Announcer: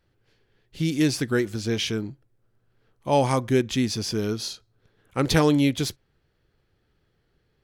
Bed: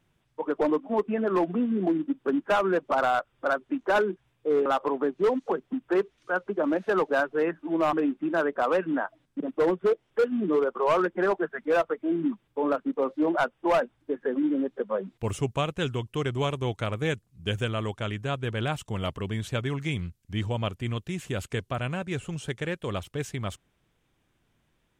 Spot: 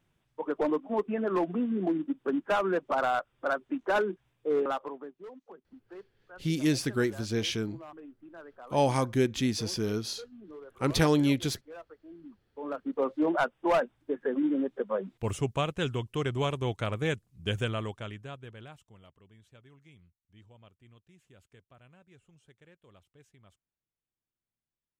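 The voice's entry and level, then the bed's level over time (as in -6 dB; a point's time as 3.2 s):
5.65 s, -4.5 dB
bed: 4.63 s -3.5 dB
5.23 s -22.5 dB
12.25 s -22.5 dB
13 s -2 dB
17.7 s -2 dB
19.13 s -27.5 dB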